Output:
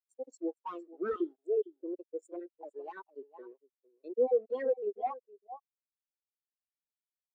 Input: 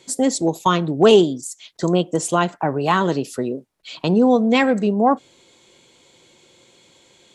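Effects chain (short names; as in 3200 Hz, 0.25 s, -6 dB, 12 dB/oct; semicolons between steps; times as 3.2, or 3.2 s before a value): random spectral dropouts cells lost 28%; sample gate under -24.5 dBFS; HPF 330 Hz 24 dB/oct; on a send: echo 0.457 s -8.5 dB; on the sum: wavefolder -13.5 dBFS; high shelf 4000 Hz +2.5 dB; spectral expander 2.5:1; gain -7.5 dB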